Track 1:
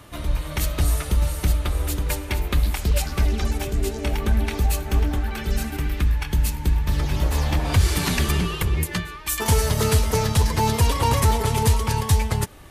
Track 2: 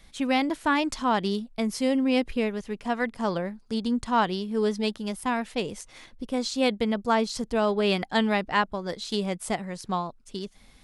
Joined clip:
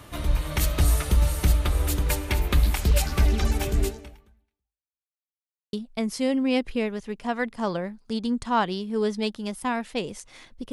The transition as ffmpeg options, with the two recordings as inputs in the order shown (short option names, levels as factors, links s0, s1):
-filter_complex "[0:a]apad=whole_dur=10.72,atrim=end=10.72,asplit=2[s0][s1];[s0]atrim=end=5.03,asetpts=PTS-STARTPTS,afade=t=out:st=3.84:d=1.19:c=exp[s2];[s1]atrim=start=5.03:end=5.73,asetpts=PTS-STARTPTS,volume=0[s3];[1:a]atrim=start=1.34:end=6.33,asetpts=PTS-STARTPTS,afade=t=in:d=0.004:c=hsin[s4];[s2][s3][s4]concat=n=3:v=0:a=1"